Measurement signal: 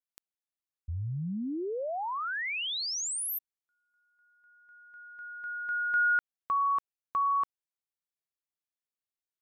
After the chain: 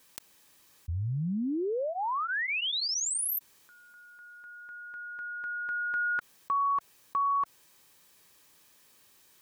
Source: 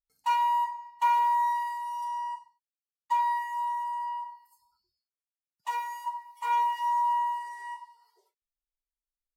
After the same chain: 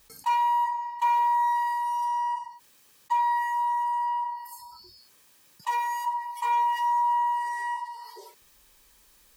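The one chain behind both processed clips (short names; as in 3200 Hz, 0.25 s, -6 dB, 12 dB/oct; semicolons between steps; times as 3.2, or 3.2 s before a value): notch comb 700 Hz; fast leveller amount 50%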